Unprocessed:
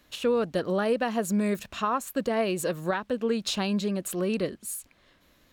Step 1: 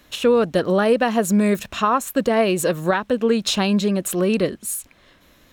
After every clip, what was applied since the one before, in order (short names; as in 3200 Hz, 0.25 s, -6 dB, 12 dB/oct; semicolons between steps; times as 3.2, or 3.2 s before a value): notch 4600 Hz, Q 16; gain +8.5 dB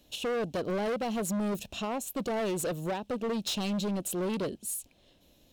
band shelf 1500 Hz -13 dB 1.3 oct; overloaded stage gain 20.5 dB; gain -8 dB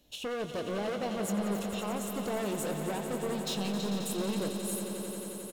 doubler 20 ms -11 dB; swelling echo 89 ms, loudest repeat 5, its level -11 dB; gain -4 dB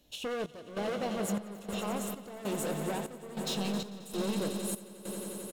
step gate "xxx..xxxx.." 98 bpm -12 dB